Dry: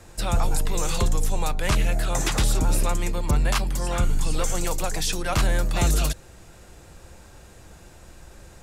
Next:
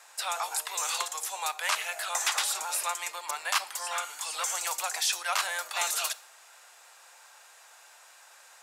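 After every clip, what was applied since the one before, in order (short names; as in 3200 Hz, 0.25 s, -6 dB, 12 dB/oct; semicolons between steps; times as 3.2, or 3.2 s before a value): HPF 800 Hz 24 dB/oct; on a send at -17 dB: reverb RT60 0.65 s, pre-delay 18 ms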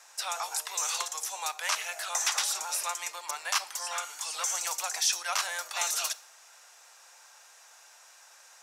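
bell 5800 Hz +8.5 dB 0.36 oct; gain -2.5 dB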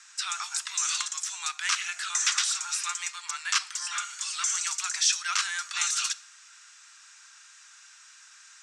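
elliptic band-pass 1300–8200 Hz, stop band 60 dB; gain +4 dB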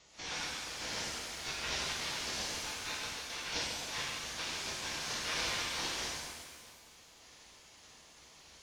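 CVSD 32 kbps; spectral gate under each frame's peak -10 dB weak; shimmer reverb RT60 1.5 s, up +7 st, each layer -8 dB, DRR -5.5 dB; gain -5.5 dB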